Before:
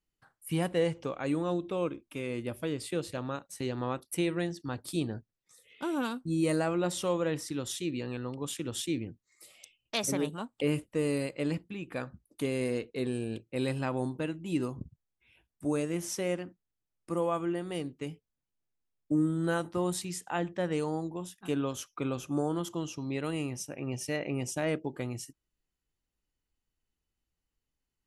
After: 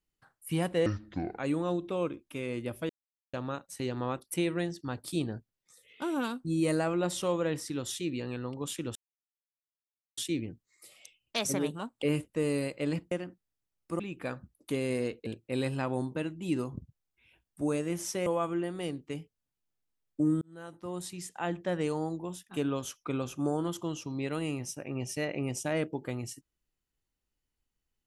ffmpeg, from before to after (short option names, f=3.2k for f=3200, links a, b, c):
-filter_complex "[0:a]asplit=11[a][b][c][d][e][f][g][h][i][j][k];[a]atrim=end=0.864[l];[b]atrim=start=0.86:end=1.19,asetpts=PTS-STARTPTS,asetrate=27783,aresample=44100[m];[c]atrim=start=1.186:end=2.7,asetpts=PTS-STARTPTS,afade=t=out:st=1.51:d=0.004:c=hsin[n];[d]atrim=start=2.7:end=3.14,asetpts=PTS-STARTPTS,volume=0[o];[e]atrim=start=3.14:end=8.76,asetpts=PTS-STARTPTS,afade=t=in:d=0.004:c=hsin,afade=t=out:st=5.616:d=0.004:c=hsin,apad=pad_dur=1.22[p];[f]atrim=start=8.76:end=11.702,asetpts=PTS-STARTPTS,afade=t=in:d=0.004:c=hsin[q];[g]atrim=start=16.298:end=17.182[r];[h]atrim=start=11.698:end=12.972[s];[i]atrim=start=13.298:end=16.302[t];[j]atrim=start=17.178:end=19.33,asetpts=PTS-STARTPTS,afade=t=out:st=2.148:d=0.004:c=hsin[u];[k]atrim=start=19.33,asetpts=PTS-STARTPTS,afade=t=in:d=1.21[v];[l][m]acrossfade=d=0.004:c1=hsin:c2=hsin[w];[n][o][p][q]concat=n=4:v=0:a=1[x];[w][x]acrossfade=d=0.004:c1=hsin:c2=hsin[y];[y][r]acrossfade=d=0.004:c1=hsin:c2=hsin[z];[z][s]acrossfade=d=0.004:c1=hsin:c2=hsin[aa];[aa][t]acrossfade=d=0.004:c1=hsin:c2=hsin[ab];[u][v]concat=n=2:v=0:a=1[ac];[ab][ac]acrossfade=d=0.004:c1=hsin:c2=hsin"